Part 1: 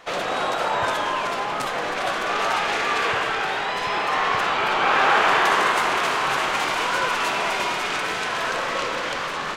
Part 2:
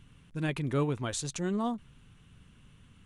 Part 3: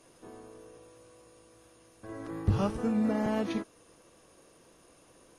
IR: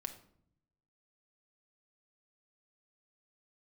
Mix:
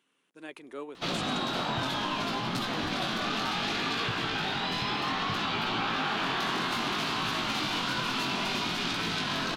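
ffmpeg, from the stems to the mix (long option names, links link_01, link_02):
-filter_complex "[0:a]equalizer=frequency=125:width_type=o:width=1:gain=7,equalizer=frequency=250:width_type=o:width=1:gain=10,equalizer=frequency=500:width_type=o:width=1:gain=-11,equalizer=frequency=1000:width_type=o:width=1:gain=-4,equalizer=frequency=2000:width_type=o:width=1:gain=-7,equalizer=frequency=4000:width_type=o:width=1:gain=7,equalizer=frequency=8000:width_type=o:width=1:gain=-8,flanger=delay=17:depth=6.4:speed=0.63,adelay=950,volume=3dB[link_01];[1:a]highpass=frequency=310:width=0.5412,highpass=frequency=310:width=1.3066,volume=-8dB,asplit=2[link_02][link_03];[2:a]adelay=350,volume=-19.5dB[link_04];[link_03]apad=whole_len=252976[link_05];[link_04][link_05]sidechaincompress=threshold=-45dB:ratio=8:attack=16:release=133[link_06];[link_01][link_02][link_06]amix=inputs=3:normalize=0,acompressor=threshold=-27dB:ratio=6"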